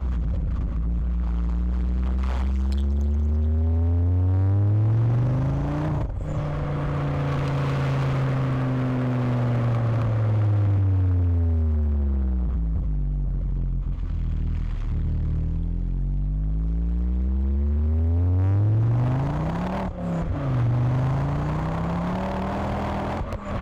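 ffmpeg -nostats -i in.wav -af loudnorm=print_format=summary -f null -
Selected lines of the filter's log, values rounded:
Input Integrated:    -24.9 LUFS
Input True Peak:     -16.8 dBTP
Input LRA:             4.9 LU
Input Threshold:     -34.9 LUFS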